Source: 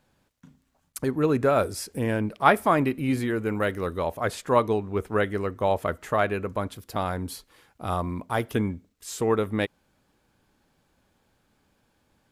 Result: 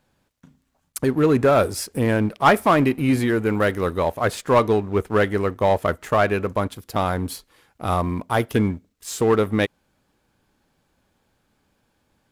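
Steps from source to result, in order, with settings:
leveller curve on the samples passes 1
in parallel at −10 dB: wave folding −15.5 dBFS

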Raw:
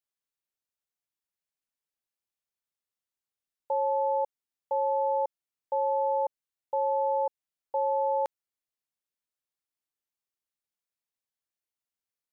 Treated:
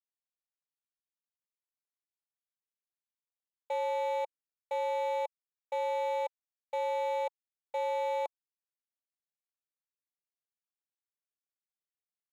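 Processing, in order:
running median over 25 samples
high-pass filter 570 Hz 12 dB per octave
notch filter 930 Hz, Q 5.9

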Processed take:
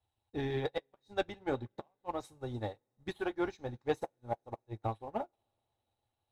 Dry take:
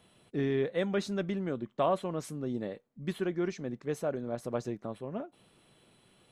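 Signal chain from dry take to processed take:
harmonic and percussive parts rebalanced percussive +6 dB
low shelf with overshoot 130 Hz +10 dB, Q 3
hollow resonant body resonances 830/3,800 Hz, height 18 dB, ringing for 35 ms
gate with flip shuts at −16 dBFS, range −28 dB
flanger 0.42 Hz, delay 1.7 ms, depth 8.7 ms, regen −61%
leveller curve on the samples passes 1
convolution reverb, pre-delay 3 ms, DRR 11.5 dB
expander for the loud parts 2.5 to 1, over −46 dBFS
level +1 dB

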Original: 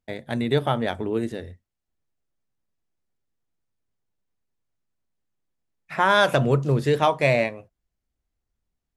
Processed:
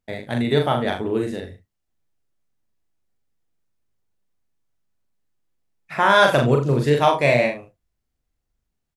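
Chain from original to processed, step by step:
ambience of single reflections 41 ms −3.5 dB, 80 ms −11.5 dB
level +1.5 dB

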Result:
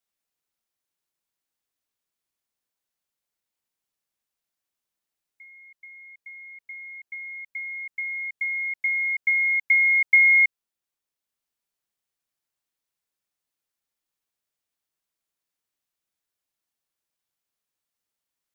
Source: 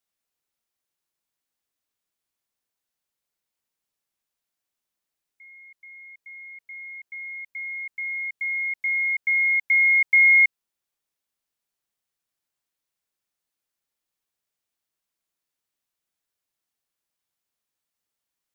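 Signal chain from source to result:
transient designer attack +4 dB, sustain −2 dB
level −1.5 dB

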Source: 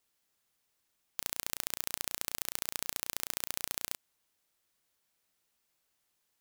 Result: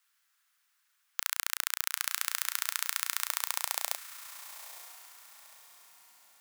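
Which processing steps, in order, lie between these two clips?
high-pass filter sweep 1,400 Hz → 180 Hz, 0:03.11–0:05.57
feedback delay with all-pass diffusion 928 ms, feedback 41%, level −13 dB
level +3.5 dB

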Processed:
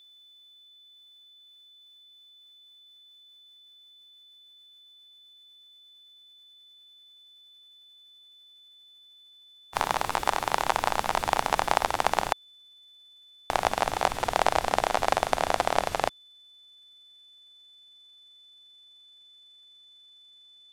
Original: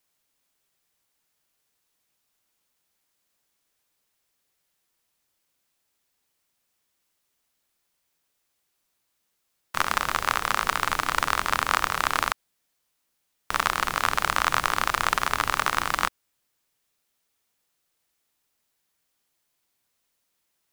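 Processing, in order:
pitch glide at a constant tempo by −12 semitones starting unshifted
steady tone 3,500 Hz −52 dBFS

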